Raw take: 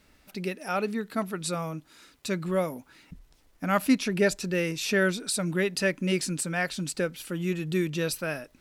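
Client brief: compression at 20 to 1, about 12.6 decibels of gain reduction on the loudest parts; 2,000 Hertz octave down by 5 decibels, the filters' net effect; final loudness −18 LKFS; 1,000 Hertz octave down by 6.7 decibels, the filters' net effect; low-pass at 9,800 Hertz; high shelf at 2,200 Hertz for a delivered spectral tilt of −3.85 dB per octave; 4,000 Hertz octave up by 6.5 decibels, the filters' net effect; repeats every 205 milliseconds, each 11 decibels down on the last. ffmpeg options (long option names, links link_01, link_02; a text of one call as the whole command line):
ffmpeg -i in.wav -af "lowpass=9800,equalizer=frequency=1000:width_type=o:gain=-9,equalizer=frequency=2000:width_type=o:gain=-7.5,highshelf=frequency=2200:gain=4.5,equalizer=frequency=4000:width_type=o:gain=6,acompressor=threshold=-29dB:ratio=20,aecho=1:1:205|410|615:0.282|0.0789|0.0221,volume=15.5dB" out.wav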